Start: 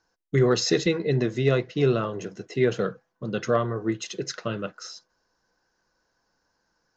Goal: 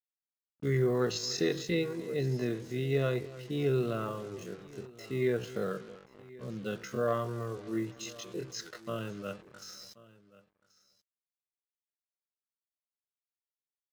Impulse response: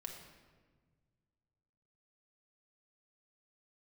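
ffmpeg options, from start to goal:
-filter_complex "[0:a]asplit=2[link_01][link_02];[link_02]adelay=143,lowpass=frequency=2500:poles=1,volume=-18dB,asplit=2[link_03][link_04];[link_04]adelay=143,lowpass=frequency=2500:poles=1,volume=0.51,asplit=2[link_05][link_06];[link_06]adelay=143,lowpass=frequency=2500:poles=1,volume=0.51,asplit=2[link_07][link_08];[link_08]adelay=143,lowpass=frequency=2500:poles=1,volume=0.51[link_09];[link_03][link_05][link_07][link_09]amix=inputs=4:normalize=0[link_10];[link_01][link_10]amix=inputs=2:normalize=0,acrusher=bits=6:mix=0:aa=0.5,atempo=0.5,asplit=2[link_11][link_12];[link_12]aecho=0:1:1081:0.0891[link_13];[link_11][link_13]amix=inputs=2:normalize=0,volume=-8.5dB"

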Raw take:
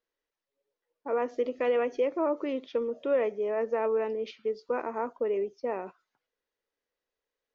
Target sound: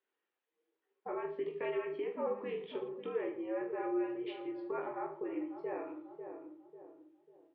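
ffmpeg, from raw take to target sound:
ffmpeg -i in.wav -filter_complex "[0:a]highpass=frequency=380:width_type=q:width=0.5412,highpass=frequency=380:width_type=q:width=1.307,lowpass=frequency=3500:width_type=q:width=0.5176,lowpass=frequency=3500:width_type=q:width=0.7071,lowpass=frequency=3500:width_type=q:width=1.932,afreqshift=-89,bandreject=frequency=50:width_type=h:width=6,bandreject=frequency=100:width_type=h:width=6,bandreject=frequency=150:width_type=h:width=6,bandreject=frequency=200:width_type=h:width=6,bandreject=frequency=250:width_type=h:width=6,bandreject=frequency=300:width_type=h:width=6,bandreject=frequency=350:width_type=h:width=6,bandreject=frequency=400:width_type=h:width=6,asplit=2[link_01][link_02];[link_02]adelay=544,lowpass=frequency=850:poles=1,volume=-13dB,asplit=2[link_03][link_04];[link_04]adelay=544,lowpass=frequency=850:poles=1,volume=0.42,asplit=2[link_05][link_06];[link_06]adelay=544,lowpass=frequency=850:poles=1,volume=0.42,asplit=2[link_07][link_08];[link_08]adelay=544,lowpass=frequency=850:poles=1,volume=0.42[link_09];[link_03][link_05][link_07][link_09]amix=inputs=4:normalize=0[link_10];[link_01][link_10]amix=inputs=2:normalize=0,acompressor=threshold=-44dB:ratio=2,asplit=2[link_11][link_12];[link_12]aecho=0:1:20|45|76.25|115.3|164.1:0.631|0.398|0.251|0.158|0.1[link_13];[link_11][link_13]amix=inputs=2:normalize=0" out.wav

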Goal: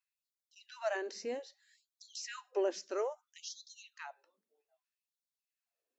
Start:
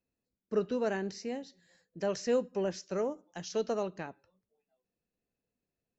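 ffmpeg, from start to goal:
ffmpeg -i in.wav -af "aphaser=in_gain=1:out_gain=1:delay=1.9:decay=0.24:speed=0.41:type=sinusoidal,afftfilt=real='re*gte(b*sr/1024,210*pow(3400/210,0.5+0.5*sin(2*PI*0.62*pts/sr)))':imag='im*gte(b*sr/1024,210*pow(3400/210,0.5+0.5*sin(2*PI*0.62*pts/sr)))':win_size=1024:overlap=0.75,volume=-1dB" out.wav

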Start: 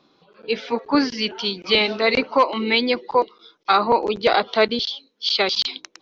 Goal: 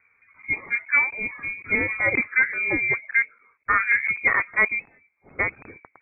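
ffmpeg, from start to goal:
ffmpeg -i in.wav -af "lowpass=frequency=2200:width_type=q:width=0.5098,lowpass=frequency=2200:width_type=q:width=0.6013,lowpass=frequency=2200:width_type=q:width=0.9,lowpass=frequency=2200:width_type=q:width=2.563,afreqshift=-2600,equalizer=frequency=100:width_type=o:width=0.67:gain=6,equalizer=frequency=630:width_type=o:width=0.67:gain=-5,equalizer=frequency=1600:width_type=o:width=0.67:gain=-5" out.wav

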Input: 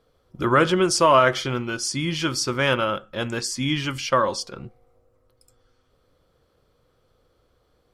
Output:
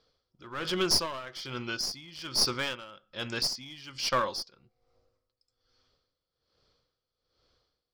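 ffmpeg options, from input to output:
ffmpeg -i in.wav -af "lowpass=frequency=4900:width_type=q:width=4.1,tiltshelf=frequency=1200:gain=-3,aeval=exprs='clip(val(0),-1,0.119)':channel_layout=same,aeval=exprs='val(0)*pow(10,-18*(0.5-0.5*cos(2*PI*1.2*n/s))/20)':channel_layout=same,volume=-6dB" out.wav

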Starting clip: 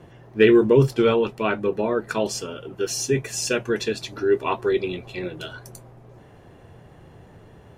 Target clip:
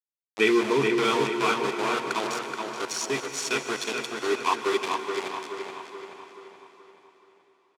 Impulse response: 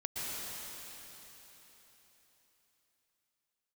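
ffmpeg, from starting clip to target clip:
-filter_complex "[0:a]aecho=1:1:0.9:0.83,aeval=exprs='val(0)*gte(abs(val(0)),0.075)':channel_layout=same,highpass=410,lowpass=7800,asplit=2[link_01][link_02];[link_02]adelay=427,lowpass=frequency=4000:poles=1,volume=-4.5dB,asplit=2[link_03][link_04];[link_04]adelay=427,lowpass=frequency=4000:poles=1,volume=0.5,asplit=2[link_05][link_06];[link_06]adelay=427,lowpass=frequency=4000:poles=1,volume=0.5,asplit=2[link_07][link_08];[link_08]adelay=427,lowpass=frequency=4000:poles=1,volume=0.5,asplit=2[link_09][link_10];[link_10]adelay=427,lowpass=frequency=4000:poles=1,volume=0.5,asplit=2[link_11][link_12];[link_12]adelay=427,lowpass=frequency=4000:poles=1,volume=0.5[link_13];[link_01][link_03][link_05][link_07][link_09][link_11][link_13]amix=inputs=7:normalize=0,asplit=2[link_14][link_15];[1:a]atrim=start_sample=2205[link_16];[link_15][link_16]afir=irnorm=-1:irlink=0,volume=-10dB[link_17];[link_14][link_17]amix=inputs=2:normalize=0,volume=-4dB"

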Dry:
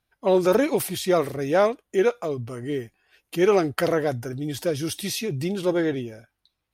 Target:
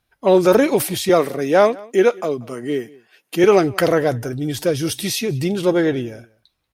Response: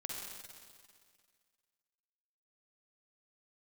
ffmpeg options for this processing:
-filter_complex "[0:a]asettb=1/sr,asplit=3[link_01][link_02][link_03];[link_01]atrim=end=1.094[link_04];[link_02]atrim=start=1.09:end=3.44,asetpts=PTS-STARTPTS,afade=type=in:duration=0.004:curve=qsin,afade=type=out:start_time=2.346:duration=0.004:curve=qsin,highpass=frequency=160:width=0.5412,highpass=frequency=160:width=1.3066[link_05];[link_03]atrim=start=3.436[link_06];[link_04][link_05]acrossfade=duration=0.004:curve1=hsin:curve2=qsin[link_07];[link_07][link_06]acrossfade=duration=0.004:curve1=qsin:curve2=hsin,asplit=2[link_08][link_09];[link_09]adelay=186.6,volume=-23dB,highshelf=frequency=4000:gain=-4.2[link_10];[link_08][link_10]amix=inputs=2:normalize=0,volume=6dB"

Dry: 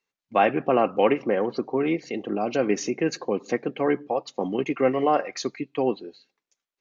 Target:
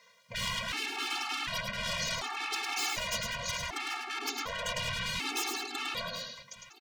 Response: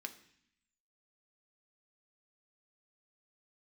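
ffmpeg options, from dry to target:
-filter_complex "[0:a]asplit=2[link_01][link_02];[link_02]highpass=frequency=720:poles=1,volume=34dB,asoftclip=type=tanh:threshold=-6.5dB[link_03];[link_01][link_03]amix=inputs=2:normalize=0,lowpass=frequency=3200:poles=1,volume=-6dB,alimiter=limit=-13dB:level=0:latency=1:release=25,asettb=1/sr,asplit=3[link_04][link_05][link_06];[link_04]atrim=end=1.954[link_07];[link_05]atrim=start=1.95:end=4.68,asetpts=PTS-STARTPTS,afade=type=in:duration=0.004:curve=qsin,afade=type=out:start_time=2.726:duration=0.004:curve=qsin,lowshelf=frequency=290:gain=10.5[link_08];[link_06]atrim=start=4.676[link_09];[link_07][link_08]acrossfade=duration=0.004:curve1=hsin:curve2=qsin[link_10];[link_10][link_09]acrossfade=duration=0.004:curve1=qsin:curve2=hsin,acompressor=threshold=-21dB:ratio=2.5,bandreject=frequency=50:width_type=h:width=6,bandreject=frequency=100:width_type=h:width=6,bandreject=frequency=150:width_type=h:width=6,bandreject=frequency=200:width_type=h:width=6,bandreject=frequency=250:width_type=h:width=6,bandreject=frequency=300:width_type=h:width=6,afftfilt=real='re*lt(hypot(re,im),0.0794)':imag='im*lt(hypot(re,im),0.0794)':win_size=1024:overlap=0.75,equalizer=frequency=1700:width_type=o:width=0.23:gain=-5,aecho=1:1:105|194|788:0.596|0.224|0.126,afftfilt=real='re*gt(sin(2*PI*0.67*pts/sr)*(1-2*mod(floor(b*sr/1024/230),2)),0)':imag='im*gt(sin(2*PI*0.67*pts/sr)*(1-2*mod(floor(b*sr/1024/230),2)),0)':win_size=1024:overlap=0.75,volume=3dB"

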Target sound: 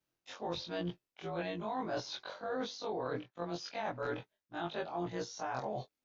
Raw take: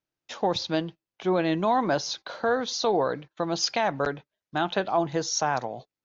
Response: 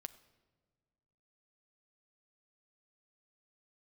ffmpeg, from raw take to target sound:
-filter_complex "[0:a]afftfilt=real='re':imag='-im':win_size=2048:overlap=0.75,areverse,acompressor=threshold=-41dB:ratio=8,areverse,tremolo=f=97:d=0.261,acrossover=split=3700[link_01][link_02];[link_02]acompressor=threshold=-58dB:ratio=4:attack=1:release=60[link_03];[link_01][link_03]amix=inputs=2:normalize=0,volume=7dB"

